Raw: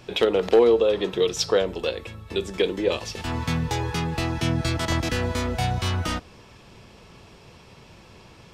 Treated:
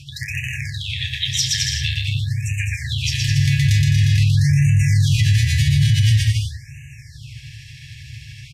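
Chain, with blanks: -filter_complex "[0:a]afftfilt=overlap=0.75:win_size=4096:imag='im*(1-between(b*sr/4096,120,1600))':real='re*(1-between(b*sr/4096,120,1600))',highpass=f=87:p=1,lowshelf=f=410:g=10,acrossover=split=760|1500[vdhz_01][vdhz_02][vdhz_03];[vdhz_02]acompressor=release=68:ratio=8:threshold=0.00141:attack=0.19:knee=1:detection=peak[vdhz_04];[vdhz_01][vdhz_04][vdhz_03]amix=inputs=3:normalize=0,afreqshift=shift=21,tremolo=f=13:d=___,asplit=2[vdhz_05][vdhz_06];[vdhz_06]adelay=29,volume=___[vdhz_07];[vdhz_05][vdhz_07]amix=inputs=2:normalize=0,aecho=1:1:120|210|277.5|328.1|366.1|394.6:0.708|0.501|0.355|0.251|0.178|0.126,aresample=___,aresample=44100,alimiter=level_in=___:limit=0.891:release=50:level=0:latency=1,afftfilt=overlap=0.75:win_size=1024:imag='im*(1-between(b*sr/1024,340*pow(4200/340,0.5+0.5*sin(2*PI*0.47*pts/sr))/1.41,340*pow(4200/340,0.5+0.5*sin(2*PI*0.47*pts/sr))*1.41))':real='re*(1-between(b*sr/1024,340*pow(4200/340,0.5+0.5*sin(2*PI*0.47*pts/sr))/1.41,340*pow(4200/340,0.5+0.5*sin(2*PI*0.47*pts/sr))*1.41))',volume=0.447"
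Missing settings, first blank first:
0.62, 0.398, 32000, 7.5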